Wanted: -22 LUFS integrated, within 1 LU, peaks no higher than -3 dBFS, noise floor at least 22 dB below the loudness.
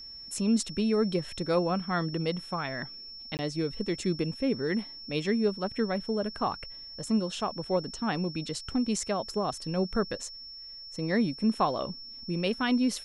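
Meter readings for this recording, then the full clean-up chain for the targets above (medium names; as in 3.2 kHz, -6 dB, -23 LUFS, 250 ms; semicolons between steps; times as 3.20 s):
dropouts 1; longest dropout 19 ms; steady tone 5.4 kHz; tone level -42 dBFS; loudness -30.5 LUFS; peak level -14.0 dBFS; loudness target -22.0 LUFS
-> interpolate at 3.37 s, 19 ms; band-stop 5.4 kHz, Q 30; trim +8.5 dB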